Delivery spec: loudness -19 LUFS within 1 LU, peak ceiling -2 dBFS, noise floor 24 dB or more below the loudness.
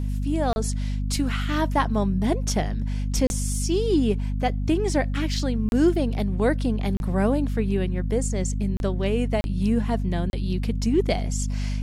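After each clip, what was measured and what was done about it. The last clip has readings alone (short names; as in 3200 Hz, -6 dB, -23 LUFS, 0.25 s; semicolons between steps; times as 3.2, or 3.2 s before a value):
dropouts 7; longest dropout 31 ms; hum 50 Hz; harmonics up to 250 Hz; hum level -23 dBFS; loudness -24.5 LUFS; peak -9.0 dBFS; loudness target -19.0 LUFS
-> interpolate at 0.53/3.27/5.69/6.97/8.77/9.41/10.3, 31 ms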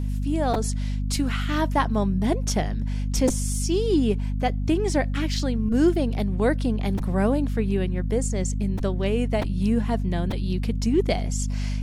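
dropouts 0; hum 50 Hz; harmonics up to 250 Hz; hum level -23 dBFS
-> notches 50/100/150/200/250 Hz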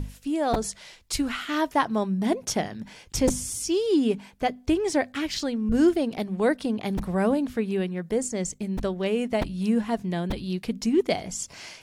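hum none; loudness -26.5 LUFS; peak -8.5 dBFS; loudness target -19.0 LUFS
-> gain +7.5 dB; limiter -2 dBFS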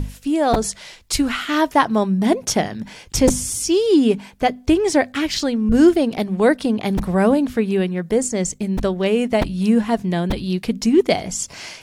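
loudness -19.0 LUFS; peak -2.0 dBFS; noise floor -44 dBFS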